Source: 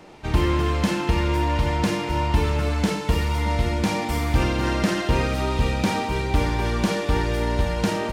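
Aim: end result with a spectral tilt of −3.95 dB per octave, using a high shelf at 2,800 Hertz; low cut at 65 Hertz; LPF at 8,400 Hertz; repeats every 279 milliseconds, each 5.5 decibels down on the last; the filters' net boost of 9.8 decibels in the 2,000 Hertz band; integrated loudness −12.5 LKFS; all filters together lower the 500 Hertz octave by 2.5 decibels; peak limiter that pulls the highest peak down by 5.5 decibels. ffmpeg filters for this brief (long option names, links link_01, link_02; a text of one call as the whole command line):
ffmpeg -i in.wav -af "highpass=65,lowpass=8400,equalizer=frequency=500:width_type=o:gain=-4,equalizer=frequency=2000:width_type=o:gain=8.5,highshelf=frequency=2800:gain=8.5,alimiter=limit=-12.5dB:level=0:latency=1,aecho=1:1:279|558|837|1116|1395|1674|1953:0.531|0.281|0.149|0.079|0.0419|0.0222|0.0118,volume=7.5dB" out.wav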